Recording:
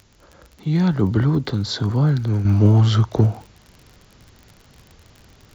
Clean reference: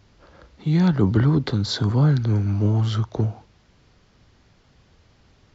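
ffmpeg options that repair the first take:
-af "adeclick=t=4,agate=range=-21dB:threshold=-43dB,asetnsamples=n=441:p=0,asendcmd='2.45 volume volume -6.5dB',volume=0dB"

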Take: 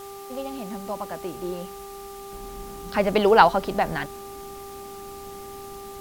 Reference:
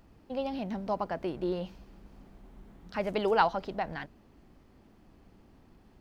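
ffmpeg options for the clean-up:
-af "bandreject=f=396.7:t=h:w=4,bandreject=f=793.4:t=h:w=4,bandreject=f=1.1901k:t=h:w=4,afwtdn=0.0045,asetnsamples=n=441:p=0,asendcmd='2.32 volume volume -10dB',volume=0dB"

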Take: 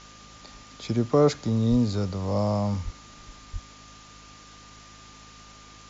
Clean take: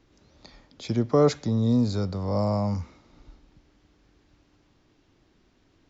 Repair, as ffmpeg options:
-filter_complex "[0:a]bandreject=f=52.6:t=h:w=4,bandreject=f=105.2:t=h:w=4,bandreject=f=157.8:t=h:w=4,bandreject=f=210.4:t=h:w=4,bandreject=f=263:t=h:w=4,bandreject=f=1.2k:w=30,asplit=3[a][b][c];[a]afade=t=out:st=1.7:d=0.02[d];[b]highpass=f=140:w=0.5412,highpass=f=140:w=1.3066,afade=t=in:st=1.7:d=0.02,afade=t=out:st=1.82:d=0.02[e];[c]afade=t=in:st=1.82:d=0.02[f];[d][e][f]amix=inputs=3:normalize=0,asplit=3[g][h][i];[g]afade=t=out:st=2.84:d=0.02[j];[h]highpass=f=140:w=0.5412,highpass=f=140:w=1.3066,afade=t=in:st=2.84:d=0.02,afade=t=out:st=2.96:d=0.02[k];[i]afade=t=in:st=2.96:d=0.02[l];[j][k][l]amix=inputs=3:normalize=0,asplit=3[m][n][o];[m]afade=t=out:st=3.52:d=0.02[p];[n]highpass=f=140:w=0.5412,highpass=f=140:w=1.3066,afade=t=in:st=3.52:d=0.02,afade=t=out:st=3.64:d=0.02[q];[o]afade=t=in:st=3.64:d=0.02[r];[p][q][r]amix=inputs=3:normalize=0,afwtdn=0.0045"

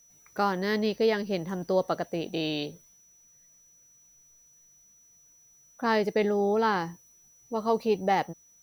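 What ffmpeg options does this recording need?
-af "bandreject=f=5.9k:w=30"

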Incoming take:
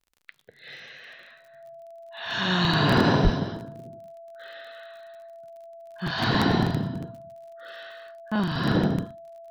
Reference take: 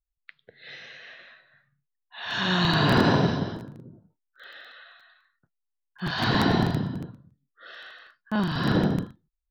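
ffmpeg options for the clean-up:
-filter_complex "[0:a]adeclick=t=4,bandreject=f=670:w=30,asplit=3[a][b][c];[a]afade=t=out:st=3.23:d=0.02[d];[b]highpass=f=140:w=0.5412,highpass=f=140:w=1.3066,afade=t=in:st=3.23:d=0.02,afade=t=out:st=3.35:d=0.02[e];[c]afade=t=in:st=3.35:d=0.02[f];[d][e][f]amix=inputs=3:normalize=0"

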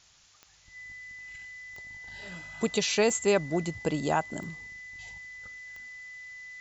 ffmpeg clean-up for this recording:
-af "adeclick=t=4,bandreject=f=2k:w=30,afftdn=nr=18:nf=-56"

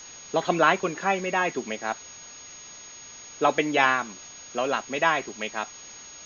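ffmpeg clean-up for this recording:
-af "bandreject=f=6.6k:w=30,afftdn=nr=25:nf=-44"

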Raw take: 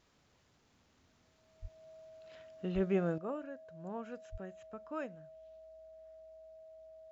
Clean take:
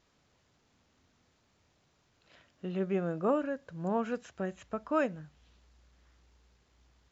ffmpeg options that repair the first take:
-filter_complex "[0:a]bandreject=f=640:w=30,asplit=3[a][b][c];[a]afade=t=out:st=1.61:d=0.02[d];[b]highpass=f=140:w=0.5412,highpass=f=140:w=1.3066,afade=t=in:st=1.61:d=0.02,afade=t=out:st=1.73:d=0.02[e];[c]afade=t=in:st=1.73:d=0.02[f];[d][e][f]amix=inputs=3:normalize=0,asplit=3[g][h][i];[g]afade=t=out:st=2.74:d=0.02[j];[h]highpass=f=140:w=0.5412,highpass=f=140:w=1.3066,afade=t=in:st=2.74:d=0.02,afade=t=out:st=2.86:d=0.02[k];[i]afade=t=in:st=2.86:d=0.02[l];[j][k][l]amix=inputs=3:normalize=0,asplit=3[m][n][o];[m]afade=t=out:st=4.31:d=0.02[p];[n]highpass=f=140:w=0.5412,highpass=f=140:w=1.3066,afade=t=in:st=4.31:d=0.02,afade=t=out:st=4.43:d=0.02[q];[o]afade=t=in:st=4.43:d=0.02[r];[p][q][r]amix=inputs=3:normalize=0,asetnsamples=n=441:p=0,asendcmd='3.18 volume volume 11.5dB',volume=0dB"

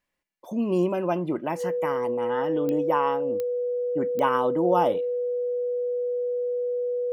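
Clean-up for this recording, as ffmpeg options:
-af "adeclick=t=4,bandreject=f=490:w=30"

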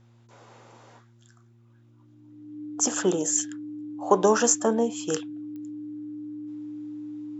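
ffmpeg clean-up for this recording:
-af "adeclick=t=4,bandreject=f=116.5:t=h:w=4,bandreject=f=233:t=h:w=4,bandreject=f=349.5:t=h:w=4,bandreject=f=300:w=30"

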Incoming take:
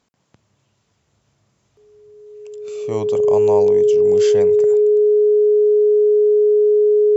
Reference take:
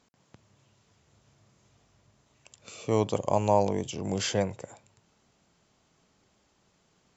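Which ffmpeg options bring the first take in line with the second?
-af "bandreject=f=420:w=30,asetnsamples=n=441:p=0,asendcmd='4.52 volume volume -4.5dB',volume=0dB"

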